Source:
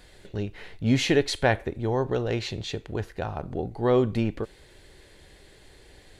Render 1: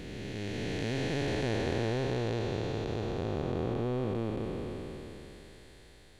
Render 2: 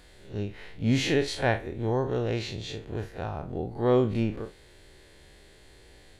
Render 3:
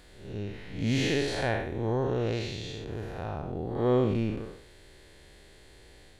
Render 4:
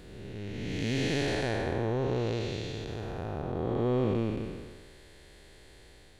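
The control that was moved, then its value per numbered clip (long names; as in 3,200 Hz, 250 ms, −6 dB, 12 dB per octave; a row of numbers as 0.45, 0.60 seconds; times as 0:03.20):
spectrum smeared in time, width: 1,370, 81, 205, 525 milliseconds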